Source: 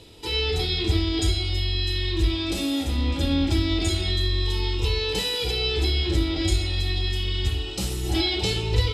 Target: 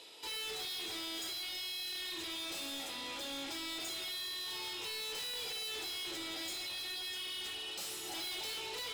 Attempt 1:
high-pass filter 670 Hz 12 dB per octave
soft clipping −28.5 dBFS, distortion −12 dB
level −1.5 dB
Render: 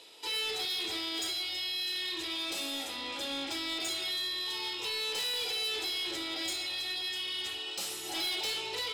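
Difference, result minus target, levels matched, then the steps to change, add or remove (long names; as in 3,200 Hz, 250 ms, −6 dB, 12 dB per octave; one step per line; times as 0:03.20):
soft clipping: distortion −6 dB
change: soft clipping −38 dBFS, distortion −6 dB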